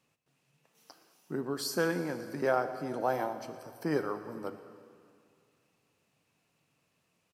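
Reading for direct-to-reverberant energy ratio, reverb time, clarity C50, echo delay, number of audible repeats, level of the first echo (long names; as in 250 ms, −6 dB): 9.5 dB, 2.4 s, 10.0 dB, 117 ms, 1, −18.5 dB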